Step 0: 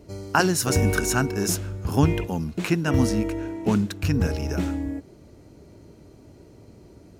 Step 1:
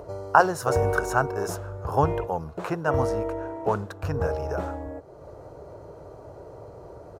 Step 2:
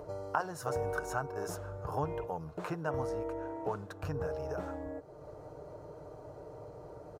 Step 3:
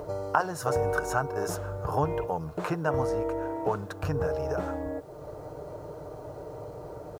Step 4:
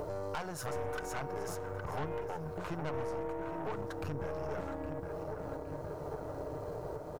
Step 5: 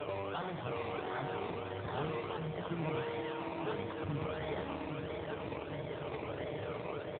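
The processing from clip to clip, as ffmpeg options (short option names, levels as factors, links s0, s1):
-filter_complex "[0:a]lowshelf=f=370:g=-6.5,asplit=2[s0][s1];[s1]acompressor=mode=upward:threshold=0.0355:ratio=2.5,volume=1.06[s2];[s0][s2]amix=inputs=2:normalize=0,firequalizer=gain_entry='entry(140,0);entry(220,-13);entry(490,8);entry(1200,5);entry(2200,-13)':delay=0.05:min_phase=1,volume=0.531"
-af "aecho=1:1:6.6:0.35,acompressor=threshold=0.0282:ratio=2,volume=0.531"
-af "acrusher=bits=11:mix=0:aa=0.000001,volume=2.37"
-filter_complex "[0:a]asplit=2[s0][s1];[s1]adelay=814,lowpass=f=2800:p=1,volume=0.335,asplit=2[s2][s3];[s3]adelay=814,lowpass=f=2800:p=1,volume=0.54,asplit=2[s4][s5];[s5]adelay=814,lowpass=f=2800:p=1,volume=0.54,asplit=2[s6][s7];[s7]adelay=814,lowpass=f=2800:p=1,volume=0.54,asplit=2[s8][s9];[s9]adelay=814,lowpass=f=2800:p=1,volume=0.54,asplit=2[s10][s11];[s11]adelay=814,lowpass=f=2800:p=1,volume=0.54[s12];[s0][s2][s4][s6][s8][s10][s12]amix=inputs=7:normalize=0,aeval=exprs='(tanh(22.4*val(0)+0.7)-tanh(0.7))/22.4':c=same,alimiter=level_in=2.82:limit=0.0631:level=0:latency=1:release=344,volume=0.355,volume=1.58"
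-af "acrusher=samples=22:mix=1:aa=0.000001:lfo=1:lforange=13.2:lforate=1.5,aecho=1:1:89|178|267|356|445:0.398|0.175|0.0771|0.0339|0.0149,volume=1.19" -ar 8000 -c:a libopencore_amrnb -b:a 7950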